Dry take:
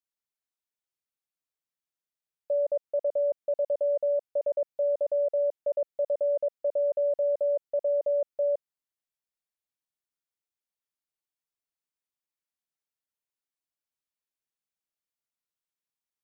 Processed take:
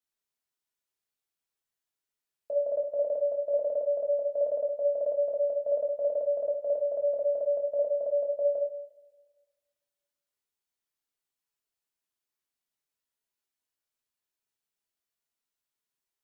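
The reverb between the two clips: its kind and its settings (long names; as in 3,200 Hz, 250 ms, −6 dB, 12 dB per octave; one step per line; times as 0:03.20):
coupled-rooms reverb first 0.53 s, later 1.6 s, from −19 dB, DRR −2.5 dB
level −1.5 dB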